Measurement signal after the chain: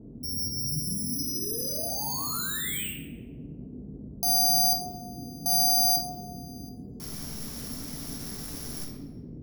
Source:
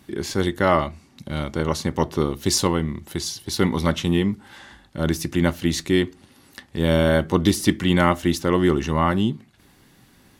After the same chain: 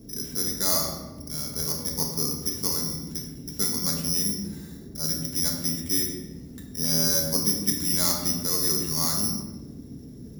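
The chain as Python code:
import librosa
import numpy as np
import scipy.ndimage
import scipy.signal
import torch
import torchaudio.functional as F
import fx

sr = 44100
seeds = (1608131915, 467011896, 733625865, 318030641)

y = (np.kron(scipy.signal.resample_poly(x, 1, 8), np.eye(8)[0]) * 8)[:len(x)]
y = fx.dmg_noise_band(y, sr, seeds[0], low_hz=44.0, high_hz=340.0, level_db=-30.0)
y = fx.room_shoebox(y, sr, seeds[1], volume_m3=690.0, walls='mixed', distance_m=1.6)
y = y * librosa.db_to_amplitude(-17.0)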